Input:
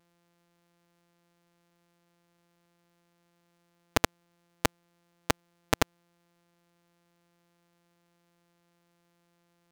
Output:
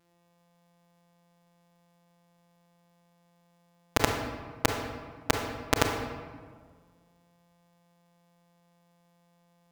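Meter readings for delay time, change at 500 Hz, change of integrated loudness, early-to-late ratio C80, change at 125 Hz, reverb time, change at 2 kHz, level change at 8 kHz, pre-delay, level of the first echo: none, +2.5 dB, +0.5 dB, 6.0 dB, +3.5 dB, 1.7 s, +1.5 dB, +1.0 dB, 30 ms, none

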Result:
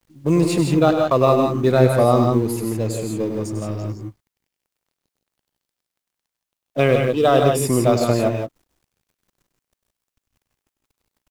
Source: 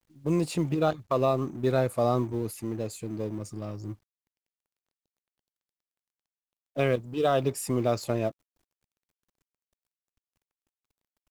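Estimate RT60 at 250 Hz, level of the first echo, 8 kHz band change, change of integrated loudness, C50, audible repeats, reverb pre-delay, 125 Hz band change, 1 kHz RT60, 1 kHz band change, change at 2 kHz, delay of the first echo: none, -9.5 dB, +10.5 dB, +10.5 dB, none, 3, none, +10.5 dB, none, +10.0 dB, +10.0 dB, 99 ms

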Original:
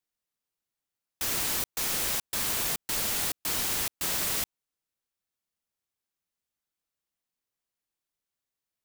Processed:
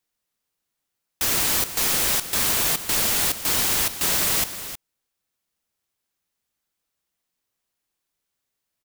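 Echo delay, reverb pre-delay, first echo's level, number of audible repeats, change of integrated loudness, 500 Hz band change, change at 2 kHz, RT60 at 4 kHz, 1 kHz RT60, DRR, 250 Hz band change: 0.315 s, none, -12.0 dB, 1, +8.0 dB, +8.0 dB, +8.0 dB, none, none, none, +7.5 dB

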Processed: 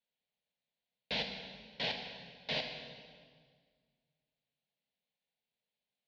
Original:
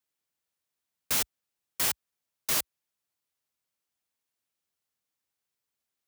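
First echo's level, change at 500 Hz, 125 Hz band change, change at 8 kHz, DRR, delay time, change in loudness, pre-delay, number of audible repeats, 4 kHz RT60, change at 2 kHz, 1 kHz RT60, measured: none, +2.0 dB, -0.5 dB, -31.5 dB, 4.0 dB, none, -10.0 dB, 17 ms, none, 1.6 s, -2.5 dB, 1.7 s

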